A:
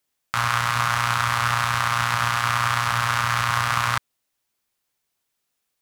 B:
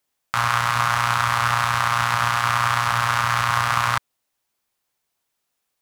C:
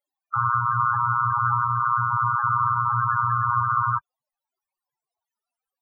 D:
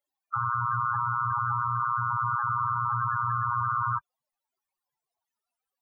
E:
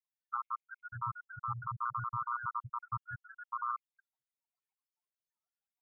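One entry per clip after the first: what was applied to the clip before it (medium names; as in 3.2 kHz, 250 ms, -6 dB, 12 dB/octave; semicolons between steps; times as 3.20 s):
peaking EQ 820 Hz +3.5 dB 1.4 oct
loudest bins only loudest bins 8; trim +2.5 dB
peak limiter -18.5 dBFS, peak gain reduction 8 dB
random holes in the spectrogram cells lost 69%; trim -6.5 dB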